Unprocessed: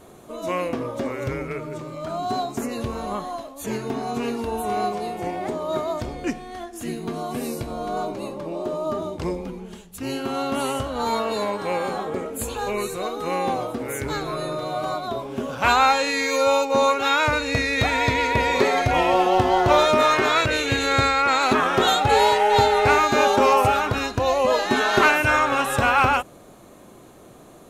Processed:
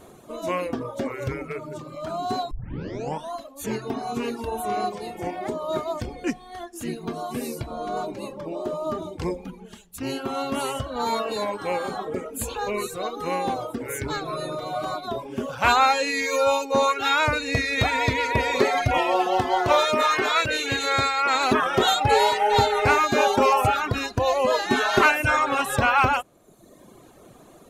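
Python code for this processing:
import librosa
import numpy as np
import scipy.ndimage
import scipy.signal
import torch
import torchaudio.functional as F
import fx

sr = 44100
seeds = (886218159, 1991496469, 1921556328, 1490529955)

y = fx.low_shelf(x, sr, hz=220.0, db=-8.5, at=(18.98, 21.35))
y = fx.edit(y, sr, fx.tape_start(start_s=2.51, length_s=0.83), tone=tone)
y = fx.dereverb_blind(y, sr, rt60_s=1.0)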